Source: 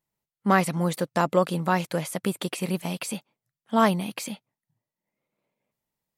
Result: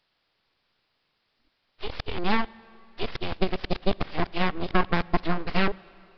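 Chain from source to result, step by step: reverse the whole clip; in parallel at +2.5 dB: peak limiter -14.5 dBFS, peak gain reduction 8 dB; on the sum: full-wave rectifier; transient shaper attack +9 dB, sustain -3 dB; word length cut 10-bit, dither triangular; on a send at -22 dB: reverberation RT60 3.2 s, pre-delay 43 ms; on the sum: resampled via 11.025 kHz; trim -8 dB

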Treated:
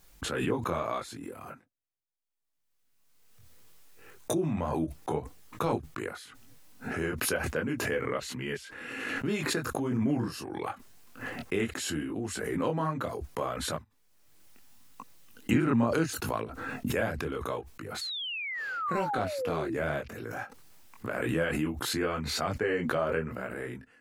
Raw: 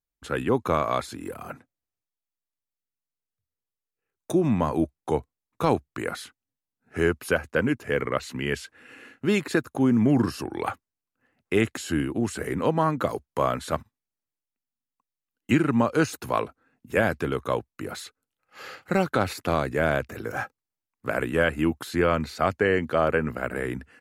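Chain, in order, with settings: chorus voices 4, 0.72 Hz, delay 22 ms, depth 4.4 ms; painted sound fall, 18.01–19.75 s, 310–4500 Hz -30 dBFS; swell ahead of each attack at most 29 dB/s; trim -5.5 dB

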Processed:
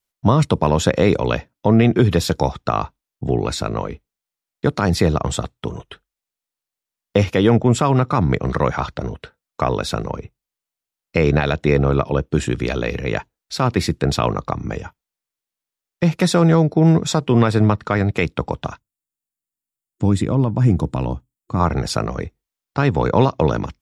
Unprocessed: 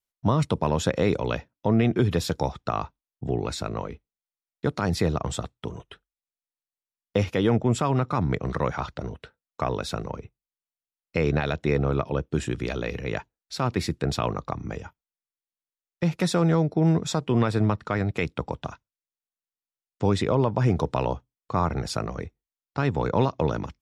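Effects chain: time-frequency box 18.79–21.60 s, 360–6700 Hz -9 dB; trim +7.5 dB

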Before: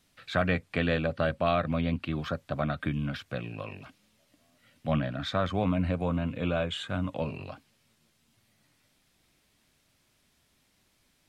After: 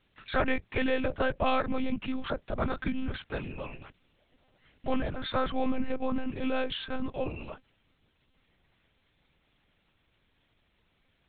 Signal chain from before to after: monotone LPC vocoder at 8 kHz 260 Hz

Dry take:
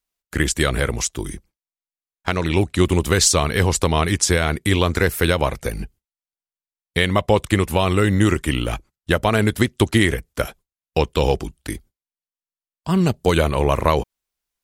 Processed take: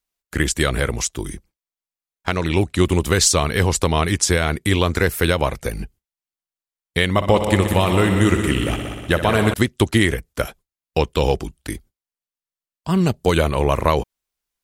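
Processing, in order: 7.10–9.54 s: multi-head delay 61 ms, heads all three, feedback 60%, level -12 dB

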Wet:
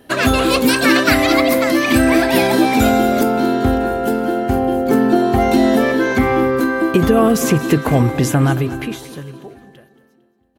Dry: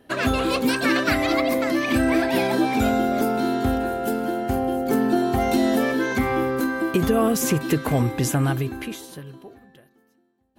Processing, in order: treble shelf 4.7 kHz +5 dB, from 3.23 s -6 dB; feedback delay 227 ms, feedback 40%, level -16 dB; trim +7 dB

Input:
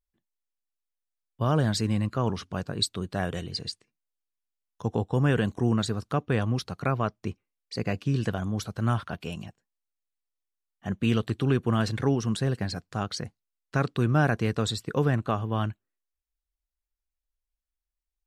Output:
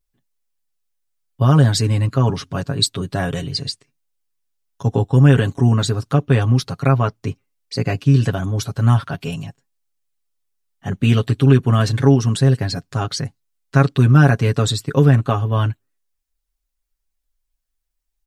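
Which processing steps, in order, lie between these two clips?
tone controls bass +4 dB, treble +3 dB; comb 7.3 ms, depth 80%; trim +5 dB

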